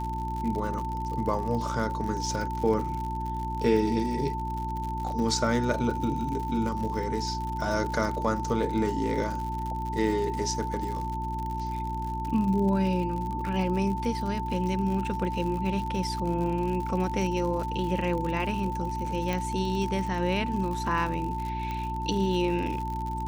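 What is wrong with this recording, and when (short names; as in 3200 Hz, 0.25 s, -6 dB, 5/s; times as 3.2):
crackle 84/s -33 dBFS
hum 60 Hz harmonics 6 -34 dBFS
tone 890 Hz -32 dBFS
19.33 pop -16 dBFS
21.71 pop -21 dBFS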